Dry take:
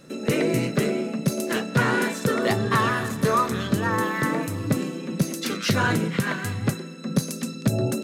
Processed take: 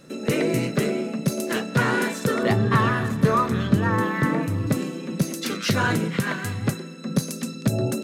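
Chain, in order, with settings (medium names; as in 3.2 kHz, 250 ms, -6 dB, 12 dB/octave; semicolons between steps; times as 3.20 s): 2.43–4.67 s: tone controls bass +6 dB, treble -7 dB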